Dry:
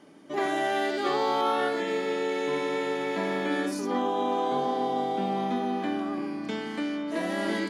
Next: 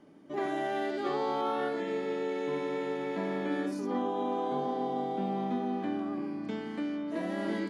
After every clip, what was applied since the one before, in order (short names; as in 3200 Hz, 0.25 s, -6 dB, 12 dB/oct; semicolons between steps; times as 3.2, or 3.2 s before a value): tilt -2 dB/oct; gain -6.5 dB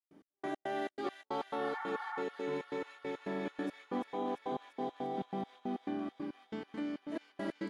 step gate ".x..x.xx" 138 bpm -60 dB; spectral repair 1.65–2.2, 740–2300 Hz before; thin delay 0.343 s, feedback 73%, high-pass 2000 Hz, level -6 dB; gain -4 dB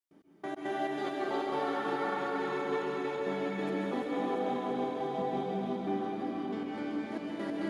plate-style reverb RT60 4.7 s, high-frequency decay 0.9×, pre-delay 0.12 s, DRR -4.5 dB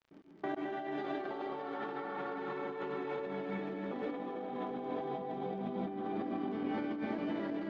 negative-ratio compressor -38 dBFS, ratio -1; crackle 48/s -47 dBFS; air absorption 200 m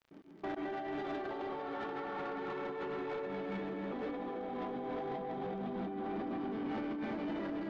soft clip -35.5 dBFS, distortion -13 dB; gain +2 dB